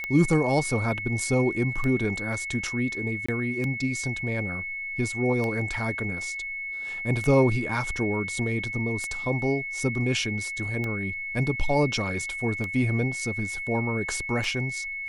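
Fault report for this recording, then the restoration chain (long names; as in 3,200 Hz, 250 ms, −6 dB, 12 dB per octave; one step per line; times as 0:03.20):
scratch tick 33 1/3 rpm −17 dBFS
whistle 2,200 Hz −31 dBFS
0:03.26–0:03.29: drop-out 25 ms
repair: click removal
notch filter 2,200 Hz, Q 30
repair the gap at 0:03.26, 25 ms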